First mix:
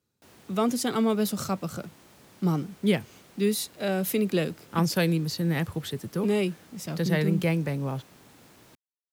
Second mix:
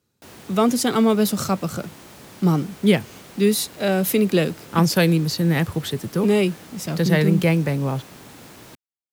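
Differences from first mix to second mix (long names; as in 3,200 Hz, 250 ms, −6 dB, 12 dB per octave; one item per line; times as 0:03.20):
speech +7.0 dB
background +11.0 dB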